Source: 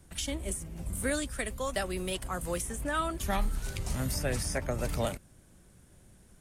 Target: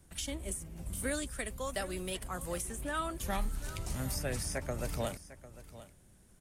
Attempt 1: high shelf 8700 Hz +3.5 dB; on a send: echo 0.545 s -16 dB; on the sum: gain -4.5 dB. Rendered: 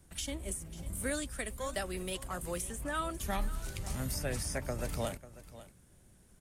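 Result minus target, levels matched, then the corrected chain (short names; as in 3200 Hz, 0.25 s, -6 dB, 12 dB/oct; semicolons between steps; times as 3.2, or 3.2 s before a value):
echo 0.205 s early
high shelf 8700 Hz +3.5 dB; on a send: echo 0.75 s -16 dB; on the sum: gain -4.5 dB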